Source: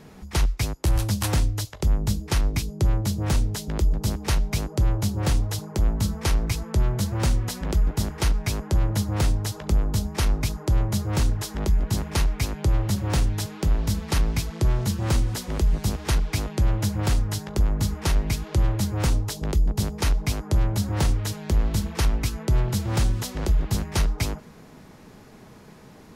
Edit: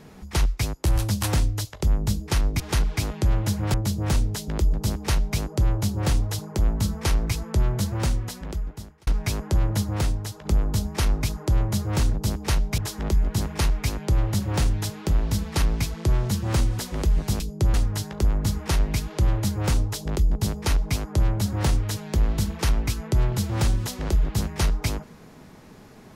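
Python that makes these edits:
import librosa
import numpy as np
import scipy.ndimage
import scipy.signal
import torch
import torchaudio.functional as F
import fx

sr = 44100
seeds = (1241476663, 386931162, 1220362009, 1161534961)

y = fx.edit(x, sr, fx.swap(start_s=2.6, length_s=0.34, other_s=15.96, other_length_s=1.14),
    fx.duplicate(start_s=3.94, length_s=0.64, to_s=11.34),
    fx.fade_out_span(start_s=7.05, length_s=1.22),
    fx.fade_out_to(start_s=8.99, length_s=0.66, floor_db=-7.0), tone=tone)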